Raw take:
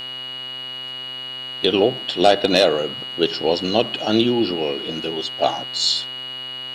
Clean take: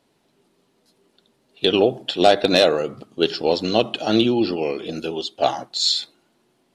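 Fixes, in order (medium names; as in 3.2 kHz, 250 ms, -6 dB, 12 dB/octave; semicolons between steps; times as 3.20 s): de-hum 129.2 Hz, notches 36; band-stop 2.9 kHz, Q 30; expander -24 dBFS, range -21 dB; trim 0 dB, from 6.37 s +8.5 dB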